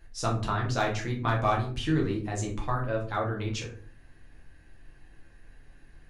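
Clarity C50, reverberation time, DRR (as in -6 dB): 7.5 dB, 0.45 s, -2.0 dB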